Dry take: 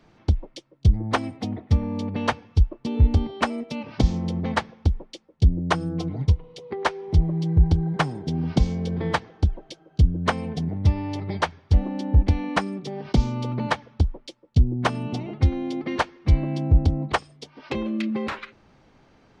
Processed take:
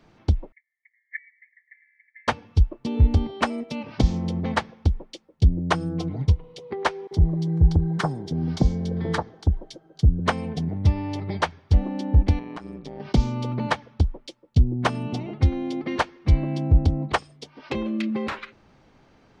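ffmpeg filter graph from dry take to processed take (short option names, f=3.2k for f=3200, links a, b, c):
-filter_complex "[0:a]asettb=1/sr,asplit=3[a][b][c];[a]atrim=end=0.524[d];[b]atrim=start=0.52:end=2.28,asetpts=PTS-STARTPTS,afade=t=in:d=0.004:c=qsin,afade=t=out:st=1.756:d=0.004:c=qsin,asuperpass=centerf=2000:order=12:qfactor=3.8,aecho=1:1:6.1:0.5,atrim=end_sample=77616,afreqshift=-40[e];[c]atrim=start=2.276[f];[d][e]acrossfade=d=0.004:c1=hsin:c2=qsin[g];[g][f]acrossfade=d=0.004:c1=qsin:c2=hsin,asettb=1/sr,asplit=3[h][i][j];[h]atrim=end=7.074[k];[i]atrim=start=7.07:end=10.2,asetpts=PTS-STARTPTS,afade=t=in:d=0.004:c=qsin,afade=t=out:st=3.126:d=0.004:c=qsin,equalizer=f=2.6k:t=o:w=0.55:g=-8,acrossover=split=1100[l][m];[l]adelay=40[n];[n][m]amix=inputs=2:normalize=0,atrim=end_sample=138033[o];[j]atrim=start=10.196[p];[k][o]acrossfade=d=0.004:c1=hsin:c2=qsin[q];[q][p]acrossfade=d=0.004:c1=qsin:c2=hsin,asettb=1/sr,asplit=3[r][s][t];[r]atrim=end=12.394[u];[s]atrim=start=12.39:end=13,asetpts=PTS-STARTPTS,afade=t=in:d=0.004:c=qsin,afade=t=out:st=0.606:d=0.004:c=qsin,highshelf=f=4.5k:g=-7,acompressor=threshold=-29dB:ratio=8:attack=3.2:release=140:knee=1:detection=peak,tremolo=f=120:d=0.824[v];[t]atrim=start=12.996[w];[u][v]acrossfade=d=0.004:c1=hsin:c2=qsin[x];[x][w]acrossfade=d=0.004:c1=qsin:c2=hsin"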